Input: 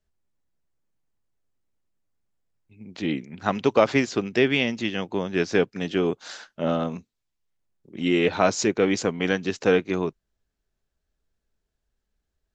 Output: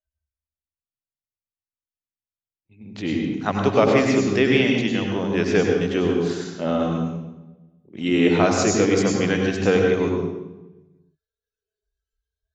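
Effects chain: spectral noise reduction 27 dB; on a send: reverberation RT60 1.1 s, pre-delay 81 ms, DRR 1.5 dB

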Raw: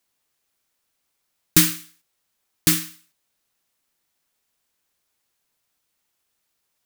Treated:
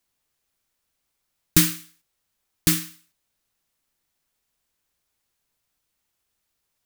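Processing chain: bass shelf 110 Hz +10 dB; trim -2.5 dB

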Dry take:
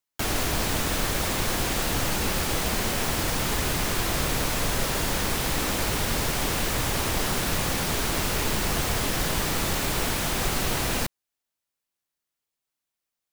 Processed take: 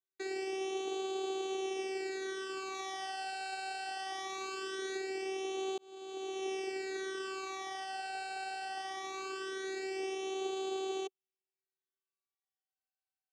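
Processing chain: 2.74–4.97 s: treble shelf 6.3 kHz +6.5 dB; vocoder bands 4, saw 383 Hz; phase shifter stages 12, 0.21 Hz, lowest notch 350–1800 Hz; 5.78–6.47 s: fade in linear; trim -7 dB

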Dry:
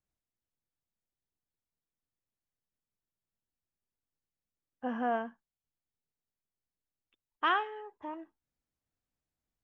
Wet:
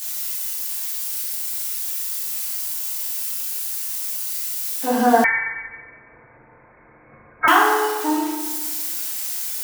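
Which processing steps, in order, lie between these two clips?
zero-crossing glitches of -31 dBFS; FDN reverb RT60 1.3 s, low-frequency decay 1.1×, high-frequency decay 0.65×, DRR -8 dB; 5.24–7.48 s: frequency inversion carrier 2.5 kHz; trim +6.5 dB

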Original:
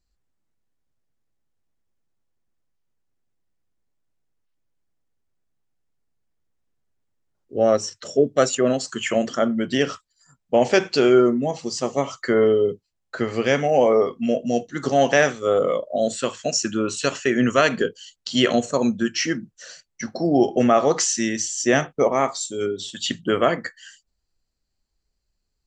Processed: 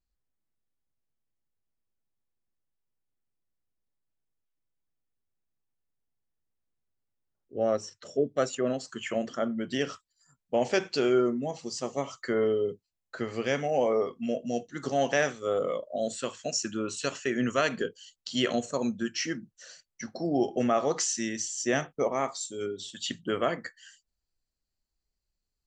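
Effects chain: treble shelf 4.5 kHz -5.5 dB, from 9.67 s +2.5 dB; trim -9 dB

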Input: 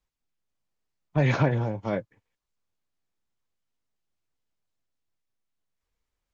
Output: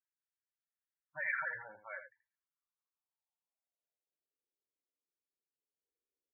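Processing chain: median filter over 9 samples; dynamic bell 2.1 kHz, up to +6 dB, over -42 dBFS, Q 0.76; band-pass sweep 1.7 kHz -> 410 Hz, 2.16–4.44 s; loudest bins only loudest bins 16; delay 82 ms -10 dB; trim -4.5 dB

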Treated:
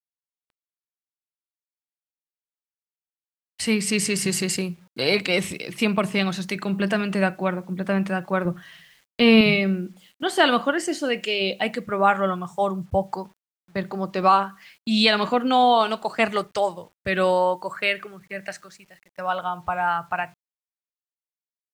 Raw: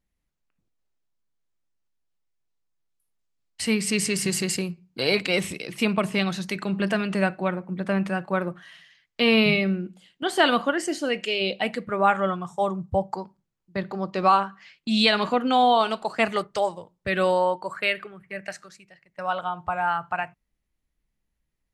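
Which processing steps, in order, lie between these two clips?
8.45–9.41 s: bass shelf 210 Hz +11 dB; word length cut 10-bit, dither none; trim +1.5 dB

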